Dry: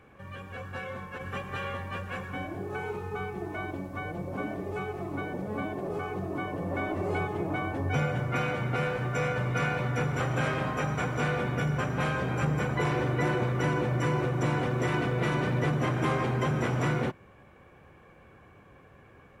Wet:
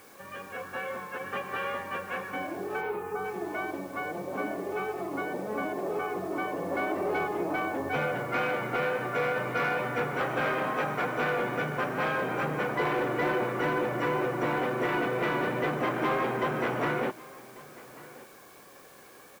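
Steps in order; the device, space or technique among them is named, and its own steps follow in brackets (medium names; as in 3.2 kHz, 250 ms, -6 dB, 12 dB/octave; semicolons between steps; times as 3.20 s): tape answering machine (band-pass 300–2800 Hz; saturation -23.5 dBFS, distortion -20 dB; wow and flutter 20 cents; white noise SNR 26 dB); 2.80–3.24 s: peaking EQ 9.4 kHz -> 2.3 kHz -12 dB 0.94 oct; delay 1144 ms -20.5 dB; trim +4 dB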